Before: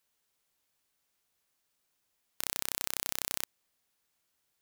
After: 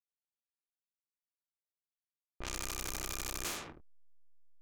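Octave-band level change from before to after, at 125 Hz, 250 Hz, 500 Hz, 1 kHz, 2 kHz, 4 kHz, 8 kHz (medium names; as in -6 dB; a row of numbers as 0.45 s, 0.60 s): +7.5 dB, +4.0 dB, +2.0 dB, +0.5 dB, -1.5 dB, -3.5 dB, -2.5 dB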